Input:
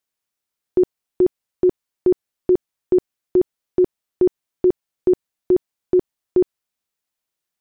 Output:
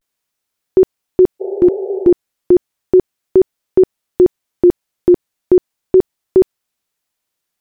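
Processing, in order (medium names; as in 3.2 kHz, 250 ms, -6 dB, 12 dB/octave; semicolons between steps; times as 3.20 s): vibrato 0.36 Hz 53 cents; spectral replace 1.43–2.08 s, 380–870 Hz after; trim +6.5 dB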